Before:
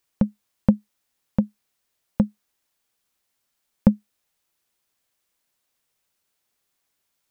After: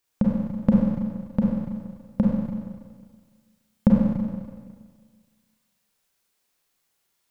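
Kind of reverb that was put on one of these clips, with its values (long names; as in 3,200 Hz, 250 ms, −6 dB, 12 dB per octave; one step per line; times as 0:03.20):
four-comb reverb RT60 1.7 s, combs from 32 ms, DRR −3.5 dB
level −2.5 dB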